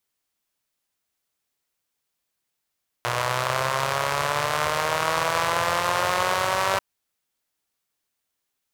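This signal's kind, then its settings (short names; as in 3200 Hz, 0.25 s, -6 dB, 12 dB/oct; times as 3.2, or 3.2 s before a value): four-cylinder engine model, changing speed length 3.74 s, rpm 3600, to 5800, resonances 120/610/1000 Hz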